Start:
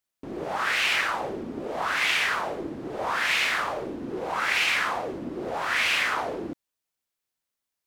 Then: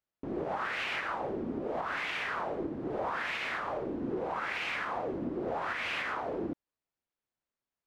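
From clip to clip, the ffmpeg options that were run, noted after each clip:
-af "lowpass=f=1.2k:p=1,alimiter=level_in=1dB:limit=-24dB:level=0:latency=1:release=255,volume=-1dB"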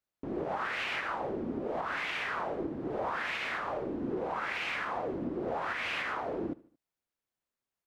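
-af "aecho=1:1:75|150|225:0.0891|0.0428|0.0205"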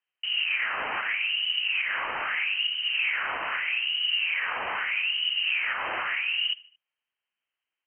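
-af "lowpass=f=2.7k:t=q:w=0.5098,lowpass=f=2.7k:t=q:w=0.6013,lowpass=f=2.7k:t=q:w=0.9,lowpass=f=2.7k:t=q:w=2.563,afreqshift=-3200,highshelf=f=2k:g=7.5,volume=2.5dB"

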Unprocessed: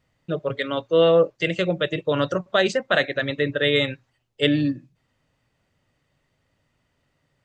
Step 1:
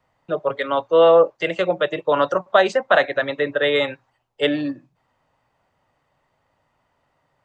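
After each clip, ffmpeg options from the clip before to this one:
-filter_complex "[0:a]equalizer=f=890:t=o:w=1.5:g=15,acrossover=split=200|610|2100[a][b][c][d];[a]acompressor=threshold=-40dB:ratio=6[e];[e][b][c][d]amix=inputs=4:normalize=0,volume=-3.5dB"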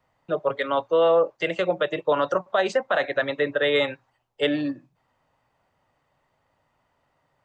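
-af "alimiter=limit=-9.5dB:level=0:latency=1:release=93,volume=-2dB"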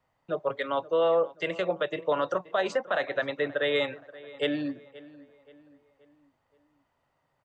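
-filter_complex "[0:a]asplit=2[a][b];[b]adelay=527,lowpass=f=2.8k:p=1,volume=-19dB,asplit=2[c][d];[d]adelay=527,lowpass=f=2.8k:p=1,volume=0.46,asplit=2[e][f];[f]adelay=527,lowpass=f=2.8k:p=1,volume=0.46,asplit=2[g][h];[h]adelay=527,lowpass=f=2.8k:p=1,volume=0.46[i];[a][c][e][g][i]amix=inputs=5:normalize=0,volume=-5dB"

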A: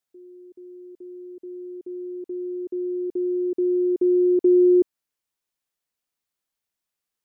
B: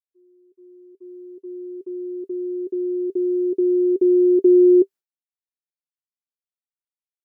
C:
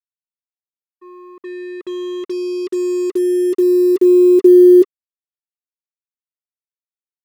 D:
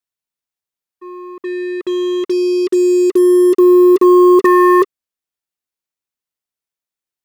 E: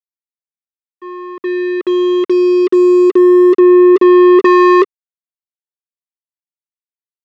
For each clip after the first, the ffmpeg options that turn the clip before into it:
-af "agate=range=-33dB:threshold=-36dB:ratio=3:detection=peak,equalizer=f=390:t=o:w=0.23:g=10,volume=-1.5dB"
-filter_complex "[0:a]asplit=2[a][b];[b]aeval=exprs='sgn(val(0))*max(abs(val(0))-0.0168,0)':c=same,volume=-9.5dB[c];[a][c]amix=inputs=2:normalize=0,acrusher=bits=5:mix=0:aa=0.5,volume=3.5dB"
-af "aeval=exprs='0.891*(cos(1*acos(clip(val(0)/0.891,-1,1)))-cos(1*PI/2))+0.398*(cos(5*acos(clip(val(0)/0.891,-1,1)))-cos(5*PI/2))+0.0398*(cos(7*acos(clip(val(0)/0.891,-1,1)))-cos(7*PI/2))':c=same,volume=-2dB"
-af "aeval=exprs='sgn(val(0))*max(abs(val(0))-0.0112,0)':c=same,highpass=180,lowpass=3.3k,acontrast=87,volume=-1dB"

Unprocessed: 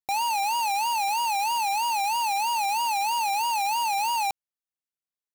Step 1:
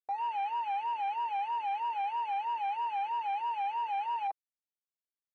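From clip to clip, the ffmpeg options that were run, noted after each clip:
-af "lowpass=2.6k,afwtdn=0.02,aecho=1:1:6.3:0.51,volume=-9dB"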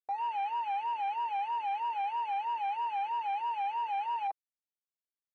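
-af anull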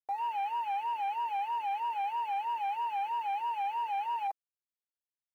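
-af "acrusher=bits=10:mix=0:aa=0.000001"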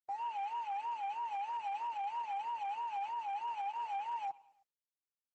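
-af "aeval=exprs='sgn(val(0))*max(abs(val(0))-0.00112,0)':c=same,aecho=1:1:106|212|318:0.0708|0.0361|0.0184,volume=-5dB" -ar 48000 -c:a libopus -b:a 10k

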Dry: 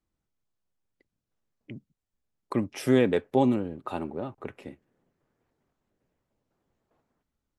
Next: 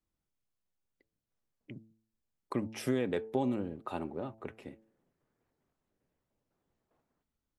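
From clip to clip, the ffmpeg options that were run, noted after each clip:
-af "bandreject=f=110.6:t=h:w=4,bandreject=f=221.2:t=h:w=4,bandreject=f=331.8:t=h:w=4,bandreject=f=442.4:t=h:w=4,bandreject=f=553:t=h:w=4,bandreject=f=663.6:t=h:w=4,bandreject=f=774.2:t=h:w=4,bandreject=f=884.8:t=h:w=4,acompressor=threshold=-22dB:ratio=6,volume=-4.5dB"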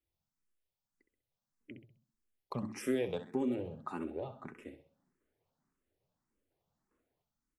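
-filter_complex "[0:a]asplit=2[a][b];[b]aecho=0:1:65|130|195|260|325:0.299|0.128|0.0552|0.0237|0.0102[c];[a][c]amix=inputs=2:normalize=0,asplit=2[d][e];[e]afreqshift=1.7[f];[d][f]amix=inputs=2:normalize=1"

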